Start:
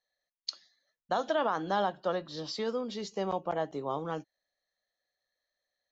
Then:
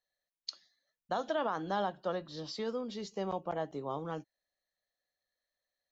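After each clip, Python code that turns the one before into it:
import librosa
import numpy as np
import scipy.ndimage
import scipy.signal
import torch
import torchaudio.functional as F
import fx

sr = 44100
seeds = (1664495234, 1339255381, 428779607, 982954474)

y = fx.low_shelf(x, sr, hz=220.0, db=4.5)
y = y * 10.0 ** (-4.5 / 20.0)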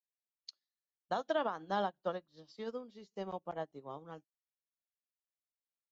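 y = fx.upward_expand(x, sr, threshold_db=-48.0, expansion=2.5)
y = y * 10.0 ** (1.5 / 20.0)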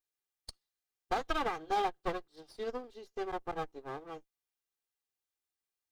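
y = fx.lower_of_two(x, sr, delay_ms=2.5)
y = y * 10.0 ** (4.0 / 20.0)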